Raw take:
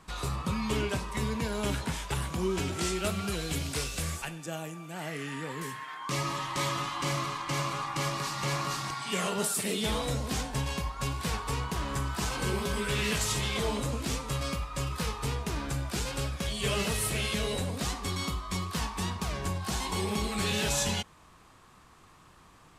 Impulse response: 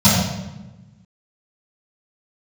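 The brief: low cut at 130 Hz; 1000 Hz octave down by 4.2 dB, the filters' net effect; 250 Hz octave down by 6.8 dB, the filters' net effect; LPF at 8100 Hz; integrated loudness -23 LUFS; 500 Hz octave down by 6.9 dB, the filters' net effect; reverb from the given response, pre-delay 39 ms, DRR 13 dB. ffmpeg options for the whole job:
-filter_complex "[0:a]highpass=130,lowpass=8.1k,equalizer=f=250:t=o:g=-7.5,equalizer=f=500:t=o:g=-5.5,equalizer=f=1k:t=o:g=-3.5,asplit=2[a][b];[1:a]atrim=start_sample=2205,adelay=39[c];[b][c]afir=irnorm=-1:irlink=0,volume=-37dB[d];[a][d]amix=inputs=2:normalize=0,volume=11dB"

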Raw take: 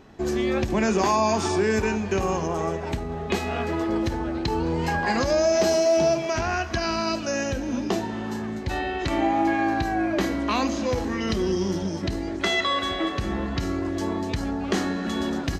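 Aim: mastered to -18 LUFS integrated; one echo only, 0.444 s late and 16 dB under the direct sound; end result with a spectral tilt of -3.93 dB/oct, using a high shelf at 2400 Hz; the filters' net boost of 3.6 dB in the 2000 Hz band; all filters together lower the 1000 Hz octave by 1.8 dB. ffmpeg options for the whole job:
-af "equalizer=f=1k:t=o:g=-4,equalizer=f=2k:t=o:g=3,highshelf=f=2.4k:g=5.5,aecho=1:1:444:0.158,volume=6dB"

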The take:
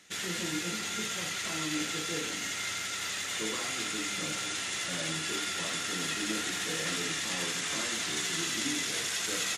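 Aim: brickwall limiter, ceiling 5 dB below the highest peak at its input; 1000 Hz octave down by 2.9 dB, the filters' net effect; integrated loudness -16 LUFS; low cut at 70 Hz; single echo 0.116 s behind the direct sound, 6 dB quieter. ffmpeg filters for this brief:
-af "highpass=70,equalizer=f=1k:t=o:g=-4.5,alimiter=level_in=1dB:limit=-24dB:level=0:latency=1,volume=-1dB,aecho=1:1:116:0.501,volume=16dB"

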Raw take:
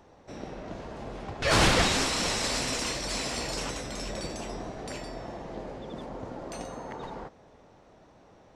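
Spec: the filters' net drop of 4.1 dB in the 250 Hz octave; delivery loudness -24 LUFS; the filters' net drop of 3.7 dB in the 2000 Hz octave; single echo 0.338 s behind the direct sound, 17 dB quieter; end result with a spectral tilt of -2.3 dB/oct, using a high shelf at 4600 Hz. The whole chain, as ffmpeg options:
-af "equalizer=f=250:t=o:g=-5.5,equalizer=f=2k:t=o:g=-5.5,highshelf=f=4.6k:g=4,aecho=1:1:338:0.141,volume=5dB"

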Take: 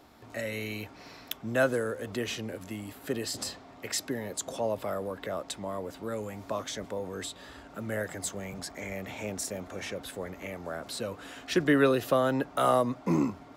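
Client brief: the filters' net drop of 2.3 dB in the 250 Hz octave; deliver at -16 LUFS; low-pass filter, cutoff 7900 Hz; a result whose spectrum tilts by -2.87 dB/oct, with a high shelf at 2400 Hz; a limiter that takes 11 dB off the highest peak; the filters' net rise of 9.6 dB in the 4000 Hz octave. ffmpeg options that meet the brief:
-af "lowpass=7.9k,equalizer=f=250:t=o:g=-3,highshelf=f=2.4k:g=8.5,equalizer=f=4k:t=o:g=4.5,volume=16.5dB,alimiter=limit=-2.5dB:level=0:latency=1"

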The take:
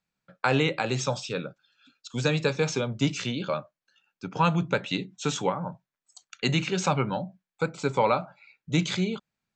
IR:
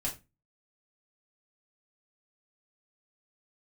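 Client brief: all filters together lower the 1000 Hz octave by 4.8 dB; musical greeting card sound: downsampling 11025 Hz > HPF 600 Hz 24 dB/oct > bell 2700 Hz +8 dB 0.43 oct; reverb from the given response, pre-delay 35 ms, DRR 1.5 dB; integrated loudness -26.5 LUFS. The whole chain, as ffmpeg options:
-filter_complex "[0:a]equalizer=f=1k:t=o:g=-6,asplit=2[a][b];[1:a]atrim=start_sample=2205,adelay=35[c];[b][c]afir=irnorm=-1:irlink=0,volume=-4.5dB[d];[a][d]amix=inputs=2:normalize=0,aresample=11025,aresample=44100,highpass=f=600:w=0.5412,highpass=f=600:w=1.3066,equalizer=f=2.7k:t=o:w=0.43:g=8,volume=1.5dB"

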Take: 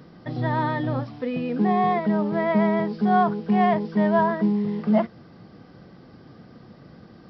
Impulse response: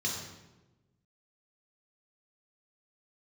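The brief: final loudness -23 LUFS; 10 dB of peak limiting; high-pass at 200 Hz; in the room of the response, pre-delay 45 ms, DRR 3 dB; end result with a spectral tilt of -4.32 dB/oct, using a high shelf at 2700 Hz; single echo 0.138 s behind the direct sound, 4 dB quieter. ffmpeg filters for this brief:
-filter_complex "[0:a]highpass=200,highshelf=f=2.7k:g=-5,alimiter=limit=-19.5dB:level=0:latency=1,aecho=1:1:138:0.631,asplit=2[a][b];[1:a]atrim=start_sample=2205,adelay=45[c];[b][c]afir=irnorm=-1:irlink=0,volume=-8dB[d];[a][d]amix=inputs=2:normalize=0,volume=2dB"

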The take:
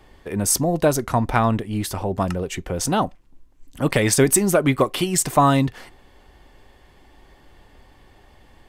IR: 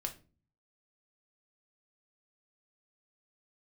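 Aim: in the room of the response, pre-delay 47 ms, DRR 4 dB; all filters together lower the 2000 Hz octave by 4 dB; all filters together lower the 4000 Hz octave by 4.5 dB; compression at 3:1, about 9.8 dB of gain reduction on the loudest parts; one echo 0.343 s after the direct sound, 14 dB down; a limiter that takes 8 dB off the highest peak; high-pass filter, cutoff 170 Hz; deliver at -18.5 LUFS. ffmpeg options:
-filter_complex "[0:a]highpass=170,equalizer=f=2k:t=o:g=-4,equalizer=f=4k:t=o:g=-5,acompressor=threshold=-26dB:ratio=3,alimiter=limit=-19dB:level=0:latency=1,aecho=1:1:343:0.2,asplit=2[a][b];[1:a]atrim=start_sample=2205,adelay=47[c];[b][c]afir=irnorm=-1:irlink=0,volume=-4dB[d];[a][d]amix=inputs=2:normalize=0,volume=10.5dB"

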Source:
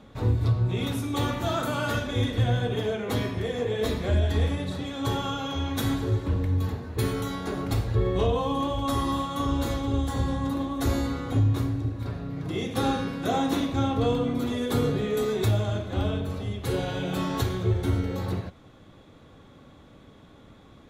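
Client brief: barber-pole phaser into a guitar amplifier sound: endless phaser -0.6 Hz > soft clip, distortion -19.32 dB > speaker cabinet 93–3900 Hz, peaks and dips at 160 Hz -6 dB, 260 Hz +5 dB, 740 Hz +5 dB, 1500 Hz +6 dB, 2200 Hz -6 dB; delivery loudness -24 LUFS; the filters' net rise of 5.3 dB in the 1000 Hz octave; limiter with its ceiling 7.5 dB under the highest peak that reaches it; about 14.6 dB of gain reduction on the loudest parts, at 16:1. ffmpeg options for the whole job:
-filter_complex "[0:a]equalizer=f=1k:t=o:g=3.5,acompressor=threshold=-33dB:ratio=16,alimiter=level_in=7dB:limit=-24dB:level=0:latency=1,volume=-7dB,asplit=2[a][b];[b]afreqshift=-0.6[c];[a][c]amix=inputs=2:normalize=1,asoftclip=threshold=-35.5dB,highpass=93,equalizer=f=160:t=q:w=4:g=-6,equalizer=f=260:t=q:w=4:g=5,equalizer=f=740:t=q:w=4:g=5,equalizer=f=1.5k:t=q:w=4:g=6,equalizer=f=2.2k:t=q:w=4:g=-6,lowpass=f=3.9k:w=0.5412,lowpass=f=3.9k:w=1.3066,volume=19.5dB"

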